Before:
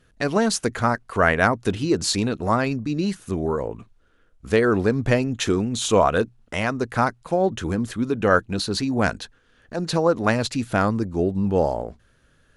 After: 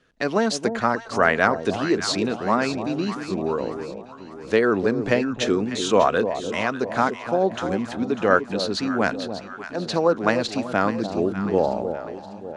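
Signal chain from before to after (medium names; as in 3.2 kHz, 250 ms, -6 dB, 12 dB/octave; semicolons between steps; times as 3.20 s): three-band isolator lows -13 dB, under 180 Hz, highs -21 dB, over 7.2 kHz; echo whose repeats swap between lows and highs 298 ms, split 850 Hz, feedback 68%, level -8 dB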